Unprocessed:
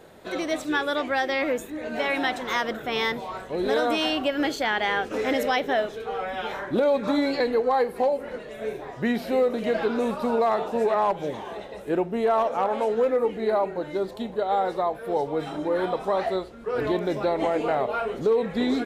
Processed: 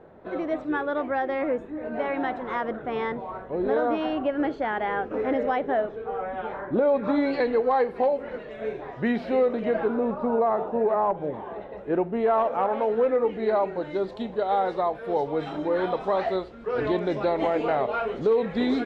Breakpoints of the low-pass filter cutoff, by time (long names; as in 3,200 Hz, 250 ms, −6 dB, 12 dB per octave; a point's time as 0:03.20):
0:06.70 1,300 Hz
0:07.40 2,900 Hz
0:09.44 2,900 Hz
0:09.98 1,200 Hz
0:11.23 1,200 Hz
0:12.24 2,300 Hz
0:12.91 2,300 Hz
0:13.70 4,200 Hz